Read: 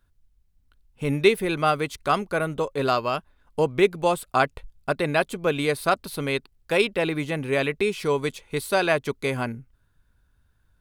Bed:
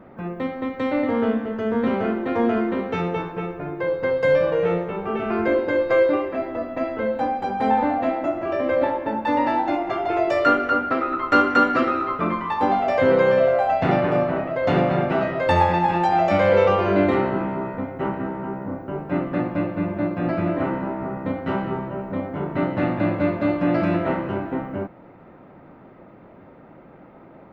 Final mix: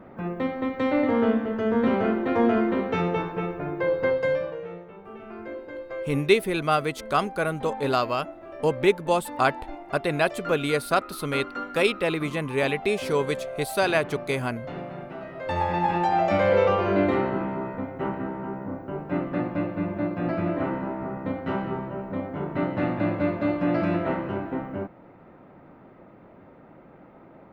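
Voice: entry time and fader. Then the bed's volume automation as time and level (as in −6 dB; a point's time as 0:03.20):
5.05 s, −1.0 dB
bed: 0:04.08 −0.5 dB
0:04.67 −16.5 dB
0:15.18 −16.5 dB
0:15.85 −3.5 dB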